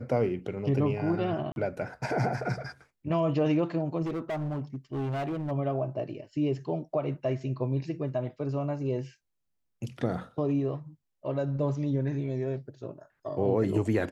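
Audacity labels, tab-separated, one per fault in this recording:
1.520000	1.560000	dropout 41 ms
4.020000	5.520000	clipped -29 dBFS

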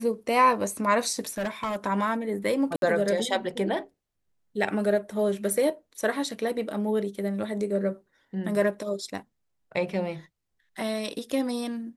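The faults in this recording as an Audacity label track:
1.290000	1.760000	clipped -25 dBFS
2.760000	2.820000	dropout 62 ms

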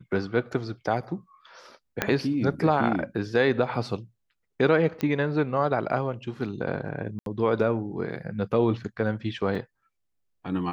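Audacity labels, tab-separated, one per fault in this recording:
2.020000	2.020000	pop -8 dBFS
5.010000	5.010000	pop -16 dBFS
7.190000	7.260000	dropout 72 ms
9.550000	9.550000	dropout 2.7 ms

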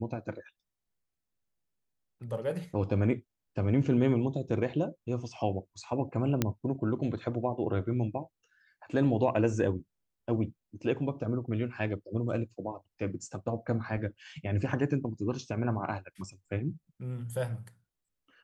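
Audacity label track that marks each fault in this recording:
6.420000	6.420000	pop -12 dBFS

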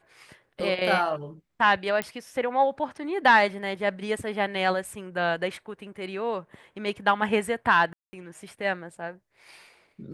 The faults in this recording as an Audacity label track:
2.020000	2.020000	pop -13 dBFS
7.930000	8.130000	dropout 200 ms

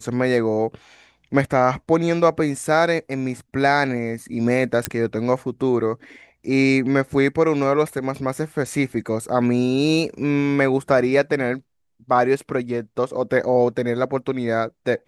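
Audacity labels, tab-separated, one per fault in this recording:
4.850000	4.850000	pop -4 dBFS

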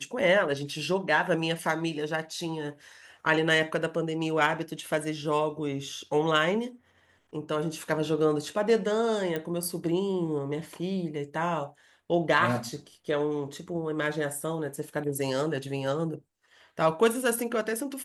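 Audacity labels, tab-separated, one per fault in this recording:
9.360000	9.360000	pop -18 dBFS

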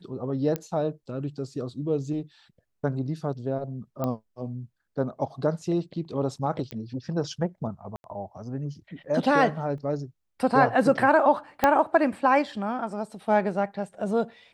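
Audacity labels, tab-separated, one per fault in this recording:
0.560000	0.560000	pop -15 dBFS
4.040000	4.040000	pop -16 dBFS
6.710000	6.710000	pop -20 dBFS
7.960000	8.040000	dropout 81 ms
9.780000	9.780000	dropout 2.3 ms
11.640000	11.640000	pop -7 dBFS

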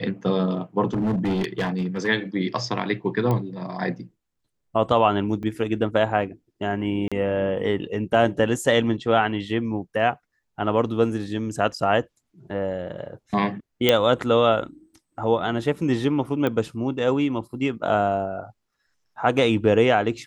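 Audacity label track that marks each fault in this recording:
0.930000	2.080000	clipped -20 dBFS
3.310000	3.310000	pop -13 dBFS
5.430000	5.430000	dropout 3.3 ms
7.080000	7.120000	dropout 36 ms
13.890000	13.890000	pop -3 dBFS
16.470000	16.470000	pop -13 dBFS

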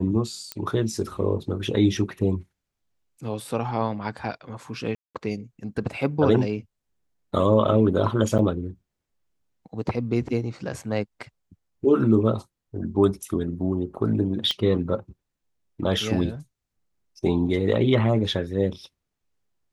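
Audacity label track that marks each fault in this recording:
0.520000	0.520000	pop -13 dBFS
4.950000	5.150000	dropout 197 ms
8.380000	8.390000	dropout 8.9 ms
14.510000	14.510000	pop -13 dBFS

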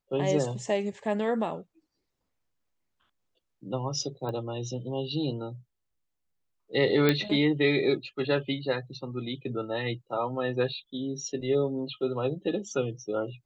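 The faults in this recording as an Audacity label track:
4.290000	4.290000	pop -24 dBFS
7.090000	7.090000	pop -10 dBFS

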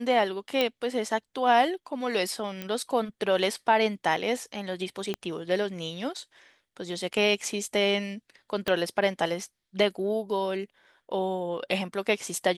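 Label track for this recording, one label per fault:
0.610000	0.610000	pop -12 dBFS
2.620000	2.620000	pop -19 dBFS
5.140000	5.140000	pop -17 dBFS
8.680000	8.680000	pop -13 dBFS

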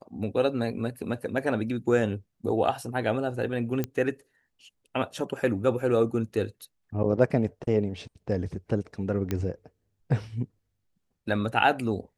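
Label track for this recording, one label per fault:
3.840000	3.840000	pop -15 dBFS
9.310000	9.310000	pop -15 dBFS

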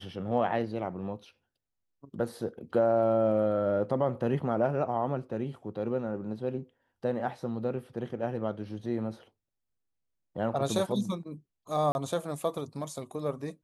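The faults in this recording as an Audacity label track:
11.920000	11.950000	dropout 31 ms

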